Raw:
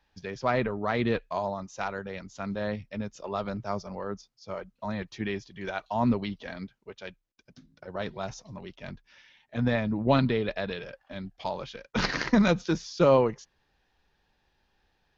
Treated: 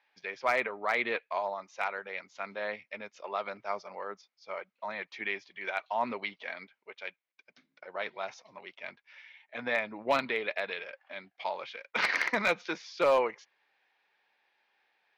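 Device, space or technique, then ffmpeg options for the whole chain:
megaphone: -af "highpass=600,lowpass=3800,equalizer=f=2200:t=o:w=0.33:g=10,asoftclip=type=hard:threshold=0.126"

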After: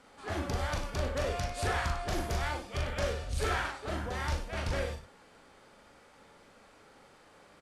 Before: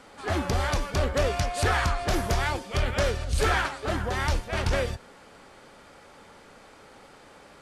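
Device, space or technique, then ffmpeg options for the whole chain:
slapback doubling: -filter_complex "[0:a]asplit=3[s0][s1][s2];[s1]adelay=40,volume=0.631[s3];[s2]adelay=98,volume=0.282[s4];[s0][s3][s4]amix=inputs=3:normalize=0,volume=0.355"

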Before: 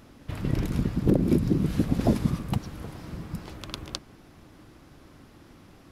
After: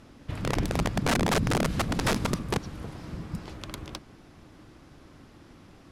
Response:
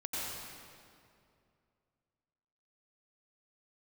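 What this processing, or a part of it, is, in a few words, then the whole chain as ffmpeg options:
overflowing digital effects unit: -af "aeval=exprs='(mod(8.41*val(0)+1,2)-1)/8.41':c=same,lowpass=10000"

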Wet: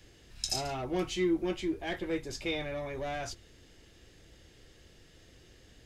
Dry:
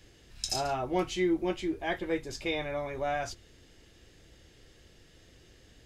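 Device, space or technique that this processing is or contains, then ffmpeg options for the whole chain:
one-band saturation: -filter_complex "[0:a]acrossover=split=440|2100[s0][s1][s2];[s1]asoftclip=type=tanh:threshold=0.0126[s3];[s0][s3][s2]amix=inputs=3:normalize=0"

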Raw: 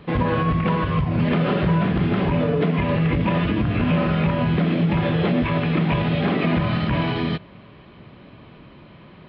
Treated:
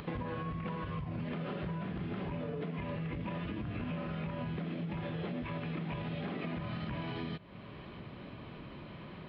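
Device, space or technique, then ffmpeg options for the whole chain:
upward and downward compression: -af "acompressor=mode=upward:threshold=0.0141:ratio=2.5,acompressor=threshold=0.0251:ratio=6,volume=0.596"

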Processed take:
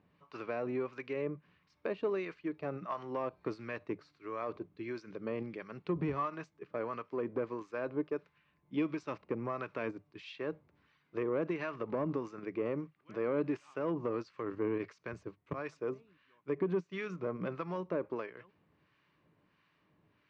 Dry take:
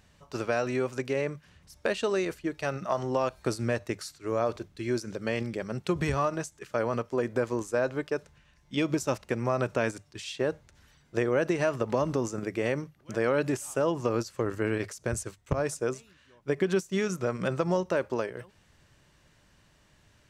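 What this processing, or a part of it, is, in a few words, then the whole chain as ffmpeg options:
guitar amplifier with harmonic tremolo: -filter_complex "[0:a]acrossover=split=970[s0][s1];[s0]aeval=exprs='val(0)*(1-0.7/2+0.7/2*cos(2*PI*1.5*n/s))':c=same[s2];[s1]aeval=exprs='val(0)*(1-0.7/2-0.7/2*cos(2*PI*1.5*n/s))':c=same[s3];[s2][s3]amix=inputs=2:normalize=0,asoftclip=type=tanh:threshold=0.0841,highpass=110,equalizer=f=170:t=q:w=4:g=6,equalizer=f=300:t=q:w=4:g=8,equalizer=f=430:t=q:w=4:g=5,equalizer=f=1100:t=q:w=4:g=8,equalizer=f=2300:t=q:w=4:g=5,equalizer=f=3400:t=q:w=4:g=-3,lowpass=f=3900:w=0.5412,lowpass=f=3900:w=1.3066,volume=0.422"

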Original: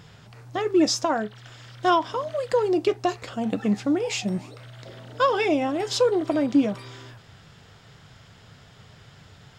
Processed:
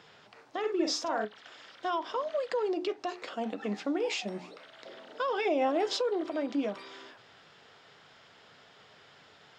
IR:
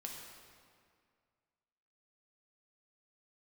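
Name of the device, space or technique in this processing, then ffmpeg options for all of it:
DJ mixer with the lows and highs turned down: -filter_complex "[0:a]acrossover=split=250 6000:gain=0.0708 1 0.158[s0][s1][s2];[s0][s1][s2]amix=inputs=3:normalize=0,alimiter=limit=0.0944:level=0:latency=1:release=116,bandreject=f=60:t=h:w=6,bandreject=f=120:t=h:w=6,bandreject=f=180:t=h:w=6,bandreject=f=240:t=h:w=6,bandreject=f=300:t=h:w=6,bandreject=f=360:t=h:w=6,asettb=1/sr,asplit=3[s3][s4][s5];[s3]atrim=end=0.594[s6];[s4]atrim=start=0.59:end=1.25,asetpts=PTS-STARTPTS,afade=t=in:d=0.004:c=qsin,afade=t=out:st=0.656:d=0.004:c=qsin,asplit=2[s7][s8];[s8]adelay=46,volume=0.596[s9];[s7][s9]amix=inputs=2:normalize=0,atrim=end_sample=29106[s10];[s5]atrim=start=1.246[s11];[s6][s10]acrossfade=d=0.004:c1=hsin:c2=qsin[s12];[s12][s11]acrossfade=d=0.004:c1=qsin:c2=hsin,asettb=1/sr,asplit=3[s13][s14][s15];[s13]atrim=end=2.134[s16];[s14]atrim=start=2.13:end=3.07,asetpts=PTS-STARTPTS,afade=t=in:d=0.004:c=qsin,afade=t=out:st=0.936:d=0.004:c=qsin,lowpass=f=9000:w=0.5412,lowpass=f=9000:w=1.3066[s17];[s15]atrim=start=3.066[s18];[s16][s17]acrossfade=d=0.004:c1=hsin:c2=qsin[s19];[s19][s18]acrossfade=d=0.004:c1=qsin:c2=hsin,asettb=1/sr,asplit=3[s20][s21][s22];[s20]atrim=end=5.454[s23];[s21]atrim=start=5.45:end=6.01,asetpts=PTS-STARTPTS,afade=t=in:d=0.004:c=qsin,afade=t=out:st=0.556:d=0.004:c=qsin,equalizer=f=570:t=o:w=1.4:g=5[s24];[s22]atrim=start=6.006[s25];[s23][s24]acrossfade=d=0.004:c1=hsin:c2=qsin[s26];[s26][s25]acrossfade=d=0.004:c1=qsin:c2=hsin,volume=0.75"

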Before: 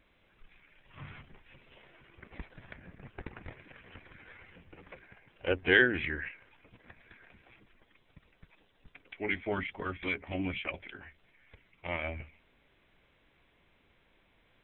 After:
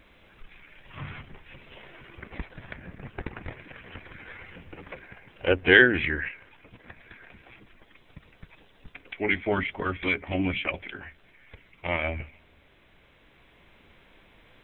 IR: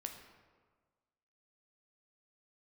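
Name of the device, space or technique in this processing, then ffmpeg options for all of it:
ducked reverb: -filter_complex "[0:a]asplit=3[s0][s1][s2];[1:a]atrim=start_sample=2205[s3];[s1][s3]afir=irnorm=-1:irlink=0[s4];[s2]apad=whole_len=645537[s5];[s4][s5]sidechaincompress=threshold=0.00251:ratio=8:attack=16:release=1130,volume=0.944[s6];[s0][s6]amix=inputs=2:normalize=0,volume=2.24"

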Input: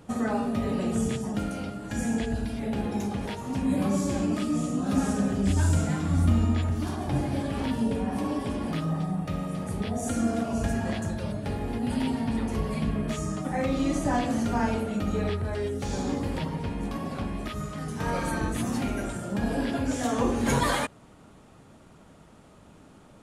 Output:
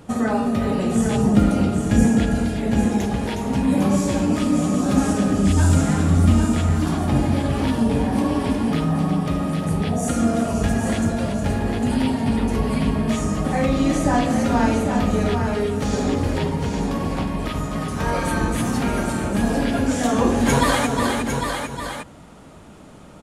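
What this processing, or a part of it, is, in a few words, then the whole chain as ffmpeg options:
ducked delay: -filter_complex "[0:a]asettb=1/sr,asplit=3[s0][s1][s2];[s0]atrim=end=1.174[s3];[s1]atrim=start=1.17:end=2.08,asetpts=PTS-STARTPTS,afade=t=in:d=0.004:c=qsin,afade=t=out:st=0.906:d=0.004:c=qsin,lowshelf=f=480:g=9.5[s4];[s2]atrim=start=2.076[s5];[s3][s4]acrossfade=d=0.004:c1=hsin:c2=qsin[s6];[s6][s5]acrossfade=d=0.004:c1=qsin:c2=hsin,asplit=3[s7][s8][s9];[s8]adelay=362,volume=0.631[s10];[s9]apad=whole_len=1040121[s11];[s10][s11]sidechaincompress=threshold=0.02:ratio=3:attack=7.3:release=221[s12];[s7][s12]amix=inputs=2:normalize=0,aecho=1:1:803:0.501,volume=2.11"

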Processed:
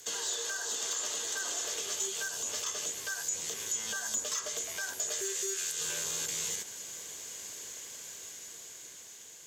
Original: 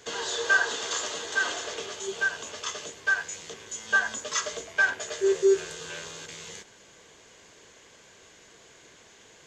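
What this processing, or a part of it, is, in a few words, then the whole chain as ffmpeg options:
FM broadcast chain: -filter_complex "[0:a]highpass=53,dynaudnorm=f=580:g=7:m=2.66,acrossover=split=1200|3500|8000[s0][s1][s2][s3];[s0]acompressor=threshold=0.02:ratio=4[s4];[s1]acompressor=threshold=0.0126:ratio=4[s5];[s2]acompressor=threshold=0.00794:ratio=4[s6];[s3]acompressor=threshold=0.00355:ratio=4[s7];[s4][s5][s6][s7]amix=inputs=4:normalize=0,aemphasis=mode=production:type=50fm,alimiter=limit=0.0891:level=0:latency=1:release=85,asoftclip=type=hard:threshold=0.0631,lowpass=f=15000:w=0.5412,lowpass=f=15000:w=1.3066,aemphasis=mode=production:type=50fm,volume=0.422"

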